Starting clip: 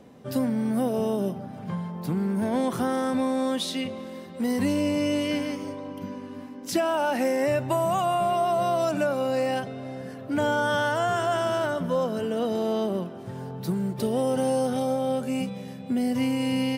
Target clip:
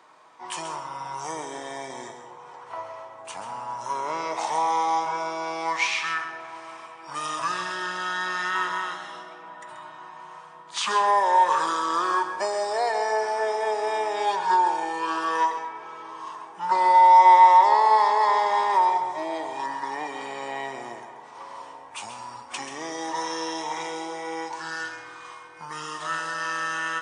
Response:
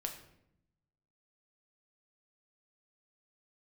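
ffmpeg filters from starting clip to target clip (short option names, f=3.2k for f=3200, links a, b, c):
-filter_complex "[0:a]asetrate=27386,aresample=44100,highpass=f=960:t=q:w=4.3,asplit=2[a][b];[1:a]atrim=start_sample=2205,adelay=133[c];[b][c]afir=irnorm=-1:irlink=0,volume=-7.5dB[d];[a][d]amix=inputs=2:normalize=0,volume=4dB"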